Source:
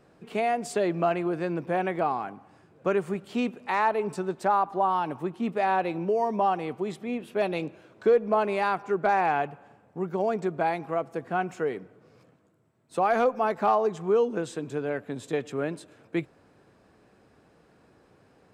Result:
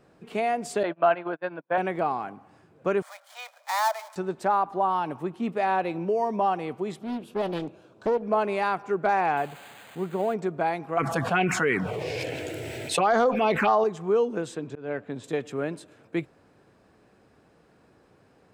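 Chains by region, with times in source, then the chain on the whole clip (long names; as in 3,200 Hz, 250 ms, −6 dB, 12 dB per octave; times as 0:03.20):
0:00.83–0:01.78: noise gate −29 dBFS, range −40 dB + loudspeaker in its box 200–4,000 Hz, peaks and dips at 210 Hz −9 dB, 380 Hz −6 dB, 620 Hz +6 dB, 940 Hz +6 dB, 1,500 Hz +9 dB, 3,300 Hz +5 dB
0:03.02–0:04.16: gap after every zero crossing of 0.12 ms + Butterworth high-pass 570 Hz 96 dB per octave + notch filter 2,700 Hz, Q 5.4
0:06.99–0:08.23: parametric band 2,000 Hz −12 dB 0.52 octaves + downward compressor 2 to 1, threshold −22 dBFS + highs frequency-modulated by the lows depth 0.63 ms
0:09.37–0:10.34: spike at every zero crossing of −24.5 dBFS + moving average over 8 samples
0:10.97–0:13.84: parametric band 2,500 Hz +11.5 dB 1.4 octaves + phaser swept by the level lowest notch 190 Hz, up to 2,500 Hz, full sweep at −17 dBFS + envelope flattener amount 70%
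0:14.55–0:15.24: volume swells 170 ms + high-frequency loss of the air 78 metres
whole clip: no processing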